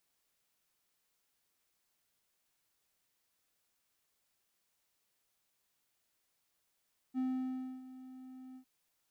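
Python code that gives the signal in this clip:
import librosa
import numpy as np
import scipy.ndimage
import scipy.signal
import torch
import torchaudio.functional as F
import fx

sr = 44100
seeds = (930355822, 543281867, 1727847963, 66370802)

y = fx.adsr_tone(sr, wave='triangle', hz=258.0, attack_ms=42.0, decay_ms=631.0, sustain_db=-17.0, held_s=1.42, release_ms=85.0, level_db=-29.0)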